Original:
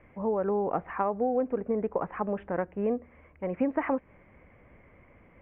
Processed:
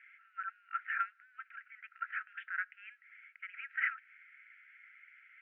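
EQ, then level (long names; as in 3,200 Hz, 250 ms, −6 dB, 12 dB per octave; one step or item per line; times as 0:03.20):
linear-phase brick-wall high-pass 1,300 Hz
high-frequency loss of the air 180 metres
+8.0 dB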